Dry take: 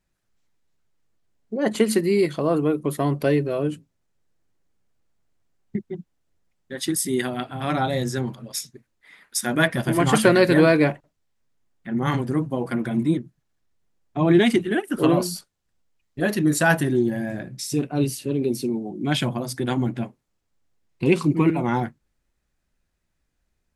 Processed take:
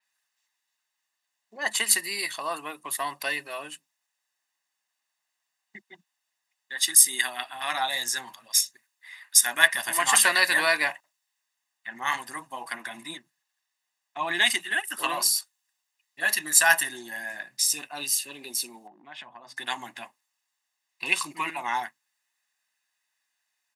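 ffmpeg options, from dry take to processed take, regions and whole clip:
-filter_complex "[0:a]asettb=1/sr,asplit=3[a][b][c];[a]atrim=end=18.874[d];[b]atrim=start=18.87:end=19.57,asetpts=PTS-STARTPTS,afade=t=in:d=0.004:c=qsin,afade=t=out:st=0.696:d=0.004:c=qsin,lowpass=f=1.2k:p=1,aemphasis=mode=reproduction:type=50fm,acompressor=threshold=-30dB:ratio=10:attack=3.2:release=140:knee=1:detection=peak[e];[c]atrim=start=19.566[f];[d][e]acrossfade=d=0.004:c1=hsin:c2=qsin[g];[g][f]acrossfade=d=0.004:c1=qsin:c2=hsin,highpass=1.3k,aecho=1:1:1.1:0.6,adynamicequalizer=threshold=0.00891:dfrequency=5900:dqfactor=0.7:tfrequency=5900:tqfactor=0.7:attack=5:release=100:ratio=0.375:range=3:mode=boostabove:tftype=highshelf,volume=3.5dB"

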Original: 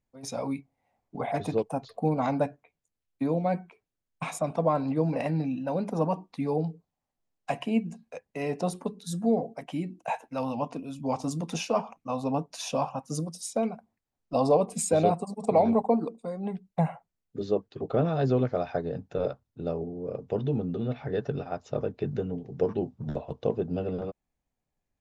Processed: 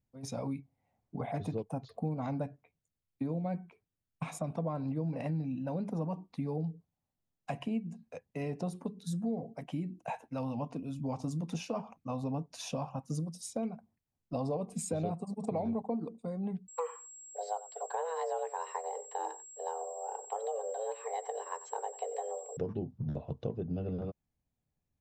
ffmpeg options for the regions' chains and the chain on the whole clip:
-filter_complex "[0:a]asettb=1/sr,asplit=3[a][b][c];[a]atrim=end=16.684[d];[b]atrim=start=16.68:end=22.57,asetpts=PTS-STARTPTS,afade=t=in:d=0.004:c=qsin,afade=t=out:st=5.886:d=0.004:c=qsin,aeval=exprs='val(0)+0.00708*sin(2*PI*7300*n/s)':c=same,afreqshift=320,aecho=1:1:92:0.126,atrim=end_sample=259749[e];[c]atrim=start=22.566[f];[d][e]acrossfade=d=0.004:c1=hsin:c2=qsin[g];[g][f]acrossfade=d=0.004:c1=qsin:c2=hsin,equalizer=f=110:t=o:w=2.4:g=11,acompressor=threshold=-27dB:ratio=3,volume=-6.5dB"

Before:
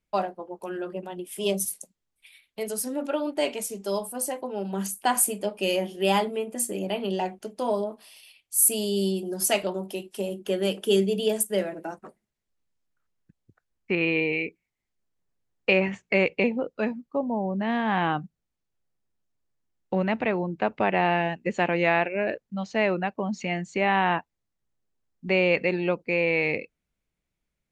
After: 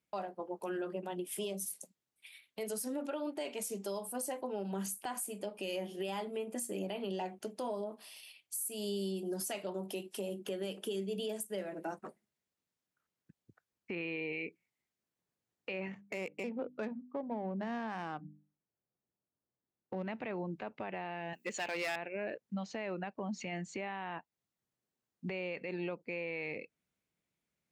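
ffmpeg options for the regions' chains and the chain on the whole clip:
-filter_complex "[0:a]asettb=1/sr,asplit=3[a][b][c];[a]atrim=end=15.924[d];[b]atrim=start=15.92:end=20.07,asetpts=PTS-STARTPTS,afade=t=in:d=0.004:c=qsin,afade=t=out:st=4.146:d=0.004:c=qsin,bandreject=f=50:t=h:w=6,bandreject=f=100:t=h:w=6,bandreject=f=150:t=h:w=6,bandreject=f=200:t=h:w=6,bandreject=f=250:t=h:w=6,bandreject=f=300:t=h:w=6,adynamicsmooth=sensitivity=2.5:basefreq=1.5k[e];[c]atrim=start=20.066[f];[d][e]acrossfade=d=0.004:c1=hsin:c2=qsin[g];[g][f]acrossfade=d=0.004:c1=qsin:c2=hsin,asettb=1/sr,asplit=3[h][i][j];[h]atrim=end=21.334[k];[i]atrim=start=21.33:end=21.96,asetpts=PTS-STARTPTS,afade=t=in:d=0.004:c=qsin,afade=t=out:st=0.626:d=0.004:c=qsin,aemphasis=mode=production:type=riaa,volume=22dB,asoftclip=hard,volume=-22dB[l];[j]atrim=start=21.956[m];[k][l]acrossfade=d=0.004:c1=hsin:c2=qsin[n];[n][m]acrossfade=d=0.004:c1=qsin:c2=hsin,highpass=120,acompressor=threshold=-32dB:ratio=6,alimiter=level_in=3dB:limit=-24dB:level=0:latency=1:release=13,volume=-3dB,volume=-2dB"

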